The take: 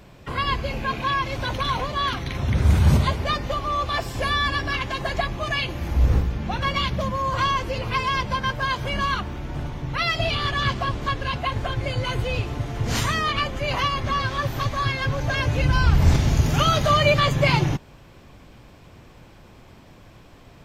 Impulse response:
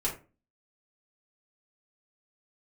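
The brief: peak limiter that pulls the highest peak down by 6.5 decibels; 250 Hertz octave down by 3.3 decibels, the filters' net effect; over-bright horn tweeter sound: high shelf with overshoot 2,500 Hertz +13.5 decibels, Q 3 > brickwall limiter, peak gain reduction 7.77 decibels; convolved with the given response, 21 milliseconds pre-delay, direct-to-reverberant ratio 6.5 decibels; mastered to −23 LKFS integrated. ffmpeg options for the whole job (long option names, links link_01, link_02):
-filter_complex "[0:a]equalizer=frequency=250:width_type=o:gain=-5.5,alimiter=limit=-12.5dB:level=0:latency=1,asplit=2[link_01][link_02];[1:a]atrim=start_sample=2205,adelay=21[link_03];[link_02][link_03]afir=irnorm=-1:irlink=0,volume=-12dB[link_04];[link_01][link_04]amix=inputs=2:normalize=0,highshelf=frequency=2500:width_type=q:width=3:gain=13.5,volume=-7dB,alimiter=limit=-13.5dB:level=0:latency=1"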